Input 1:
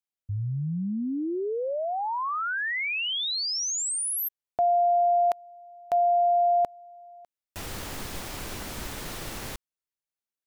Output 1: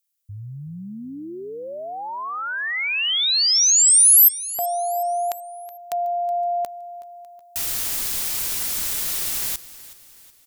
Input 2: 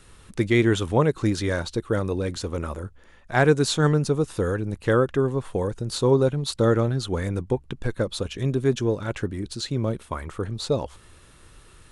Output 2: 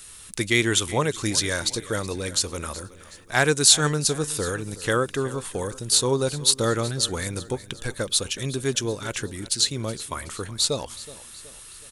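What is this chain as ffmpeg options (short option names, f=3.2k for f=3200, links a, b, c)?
-filter_complex "[0:a]crystalizer=i=9.5:c=0,asplit=2[a][b];[b]aecho=0:1:372|744|1116|1488:0.133|0.0627|0.0295|0.0138[c];[a][c]amix=inputs=2:normalize=0,volume=-5.5dB"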